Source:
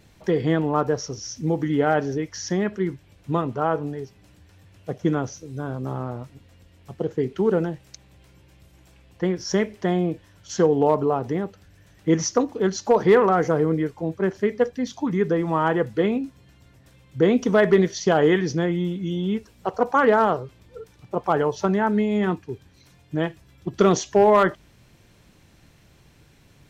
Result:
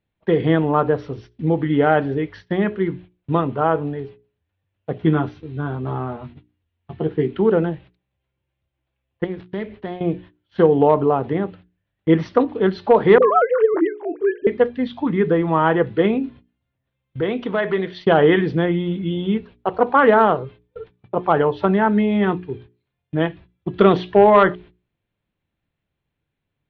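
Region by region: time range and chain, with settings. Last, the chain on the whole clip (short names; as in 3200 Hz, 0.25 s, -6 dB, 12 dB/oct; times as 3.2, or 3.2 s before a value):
4.98–7.31 bell 540 Hz -11 dB 0.22 oct + doubler 13 ms -6.5 dB
9.24–10.01 switching dead time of 0.092 ms + low shelf 110 Hz +3.5 dB + compressor 2:1, threshold -34 dBFS
13.18–14.47 sine-wave speech + dispersion highs, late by 49 ms, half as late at 500 Hz
17.2–18.06 low shelf 390 Hz -8 dB + compressor 1.5:1, threshold -28 dBFS
whole clip: steep low-pass 3800 Hz 48 dB/oct; gate -43 dBFS, range -28 dB; notches 60/120/180/240/300/360/420 Hz; gain +4.5 dB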